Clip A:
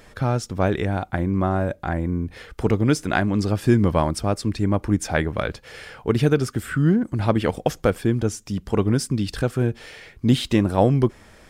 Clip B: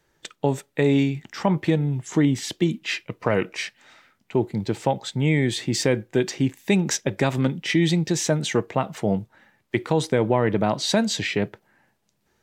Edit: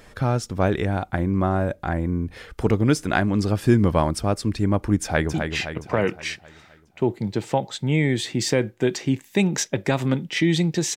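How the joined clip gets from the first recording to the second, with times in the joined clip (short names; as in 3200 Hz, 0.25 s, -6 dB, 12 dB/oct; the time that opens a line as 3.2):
clip A
5.03–5.34 echo throw 0.26 s, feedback 55%, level -6 dB
5.34 switch to clip B from 2.67 s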